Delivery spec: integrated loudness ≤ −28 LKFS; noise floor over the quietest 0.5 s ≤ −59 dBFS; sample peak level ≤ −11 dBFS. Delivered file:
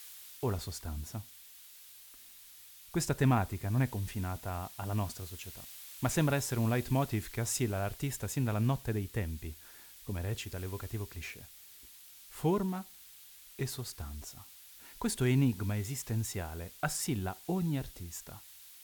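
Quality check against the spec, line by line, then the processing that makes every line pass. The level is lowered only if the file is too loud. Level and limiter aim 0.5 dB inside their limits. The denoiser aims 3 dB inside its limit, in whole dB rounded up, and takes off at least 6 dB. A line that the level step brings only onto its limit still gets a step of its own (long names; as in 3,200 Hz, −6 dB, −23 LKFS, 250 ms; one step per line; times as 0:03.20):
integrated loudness −35.0 LKFS: in spec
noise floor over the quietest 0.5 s −55 dBFS: out of spec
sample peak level −17.0 dBFS: in spec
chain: broadband denoise 7 dB, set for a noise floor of −55 dBFS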